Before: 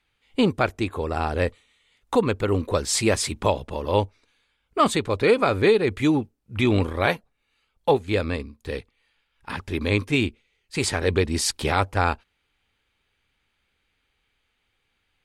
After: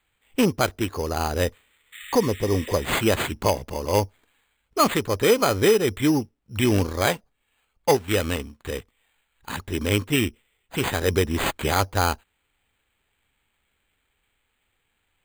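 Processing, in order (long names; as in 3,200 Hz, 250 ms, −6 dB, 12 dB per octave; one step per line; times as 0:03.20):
0:01.96–0:02.88: healed spectral selection 1,200–3,700 Hz after
0:07.89–0:08.70: high-shelf EQ 2,800 Hz +9 dB
bad sample-rate conversion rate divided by 8×, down none, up hold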